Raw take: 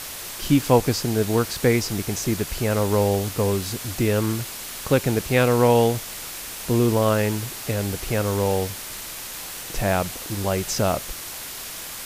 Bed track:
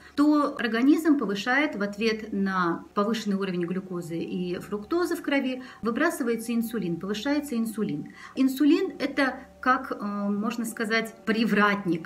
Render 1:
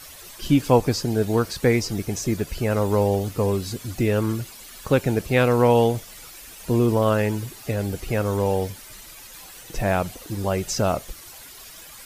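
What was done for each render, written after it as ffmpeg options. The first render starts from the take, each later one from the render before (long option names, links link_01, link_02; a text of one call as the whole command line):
ffmpeg -i in.wav -af "afftdn=noise_reduction=12:noise_floor=-35" out.wav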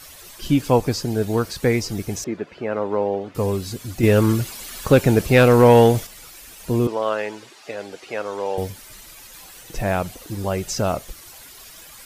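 ffmpeg -i in.wav -filter_complex "[0:a]asettb=1/sr,asplit=3[link_01][link_02][link_03];[link_01]atrim=end=2.244[link_04];[link_02]atrim=start=2.24:end=3.35,asetpts=PTS-STARTPTS,afade=type=in:duration=0.004:curve=qsin,afade=type=out:start_time=1.106:duration=0.004:curve=qsin,highpass=260,lowpass=2200[link_05];[link_03]atrim=start=3.346[link_06];[link_04][link_05]acrossfade=duration=0.004:curve1=hsin:curve2=qsin[link_07];[link_07][link_06]acrossfade=duration=0.004:curve1=qsin:curve2=hsin,asettb=1/sr,asplit=3[link_08][link_09][link_10];[link_08]atrim=end=4.034[link_11];[link_09]atrim=start=4.03:end=6.07,asetpts=PTS-STARTPTS,afade=type=in:duration=0.004:curve=qsin,afade=type=out:start_time=2.036:duration=0.004:curve=qsin,acontrast=75[link_12];[link_10]atrim=start=6.066[link_13];[link_11][link_12]acrossfade=duration=0.004:curve1=hsin:curve2=qsin[link_14];[link_14][link_13]acrossfade=duration=0.004:curve1=qsin:curve2=hsin,asettb=1/sr,asplit=3[link_15][link_16][link_17];[link_15]atrim=end=6.874[link_18];[link_16]atrim=start=6.87:end=8.58,asetpts=PTS-STARTPTS,afade=type=in:duration=0.004:curve=qsin,afade=type=out:start_time=1.706:duration=0.004:curve=qsin,highpass=450,lowpass=5600[link_19];[link_17]atrim=start=8.576[link_20];[link_18][link_19]acrossfade=duration=0.004:curve1=hsin:curve2=qsin[link_21];[link_21][link_20]acrossfade=duration=0.004:curve1=qsin:curve2=hsin" out.wav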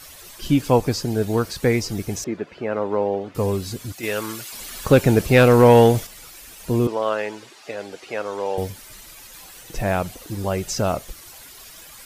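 ffmpeg -i in.wav -filter_complex "[0:a]asettb=1/sr,asplit=3[link_01][link_02][link_03];[link_01]atrim=end=3.924[link_04];[link_02]atrim=start=3.92:end=4.53,asetpts=PTS-STARTPTS,afade=type=in:duration=0.004:curve=qsin,afade=type=out:start_time=0.606:duration=0.004:curve=qsin,highpass=frequency=1300:poles=1[link_05];[link_03]atrim=start=4.526[link_06];[link_04][link_05]acrossfade=duration=0.004:curve1=hsin:curve2=qsin[link_07];[link_07][link_06]acrossfade=duration=0.004:curve1=qsin:curve2=hsin" out.wav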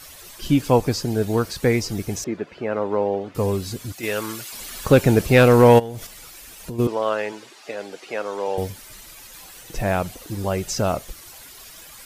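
ffmpeg -i in.wav -filter_complex "[0:a]asplit=3[link_01][link_02][link_03];[link_01]afade=type=out:start_time=5.78:duration=0.02[link_04];[link_02]acompressor=threshold=-27dB:ratio=12:attack=3.2:release=140:knee=1:detection=peak,afade=type=in:start_time=5.78:duration=0.02,afade=type=out:start_time=6.78:duration=0.02[link_05];[link_03]afade=type=in:start_time=6.78:duration=0.02[link_06];[link_04][link_05][link_06]amix=inputs=3:normalize=0,asettb=1/sr,asplit=3[link_07][link_08][link_09];[link_07]atrim=end=7.324[link_10];[link_08]atrim=start=7.32:end=8.48,asetpts=PTS-STARTPTS,afade=type=in:duration=0.004:curve=qsin,afade=type=out:start_time=1.156:duration=0.004:curve=qsin,highpass=150[link_11];[link_09]atrim=start=8.476[link_12];[link_10][link_11]acrossfade=duration=0.004:curve1=hsin:curve2=qsin[link_13];[link_13][link_12]acrossfade=duration=0.004:curve1=qsin:curve2=hsin" out.wav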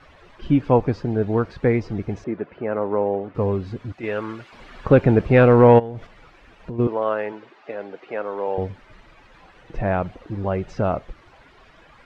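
ffmpeg -i in.wav -af "lowpass=2100,aemphasis=mode=reproduction:type=cd" out.wav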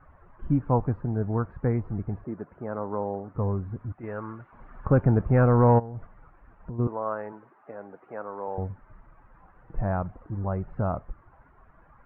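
ffmpeg -i in.wav -af "lowpass=frequency=1300:width=0.5412,lowpass=frequency=1300:width=1.3066,equalizer=frequency=430:width=0.64:gain=-10.5" out.wav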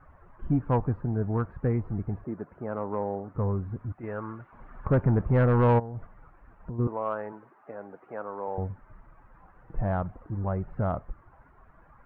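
ffmpeg -i in.wav -af "asoftclip=type=tanh:threshold=-14.5dB" out.wav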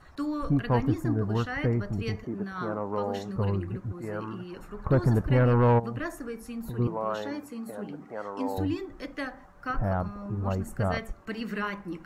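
ffmpeg -i in.wav -i bed.wav -filter_complex "[1:a]volume=-10.5dB[link_01];[0:a][link_01]amix=inputs=2:normalize=0" out.wav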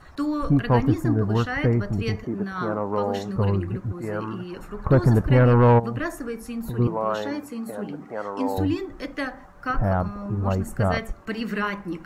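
ffmpeg -i in.wav -af "volume=5.5dB" out.wav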